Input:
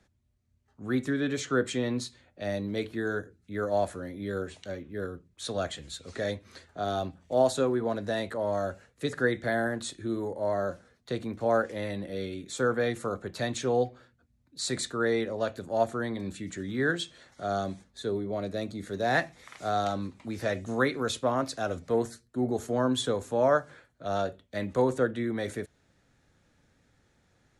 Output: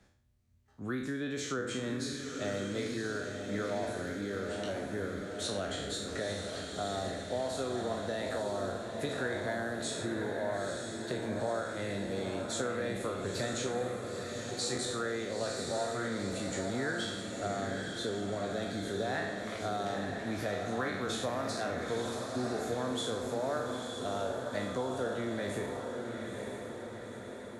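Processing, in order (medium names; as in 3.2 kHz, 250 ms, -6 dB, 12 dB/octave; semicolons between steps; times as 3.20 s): spectral sustain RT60 0.63 s; compression 4:1, threshold -34 dBFS, peak gain reduction 14 dB; on a send: echo that smears into a reverb 935 ms, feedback 60%, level -4.5 dB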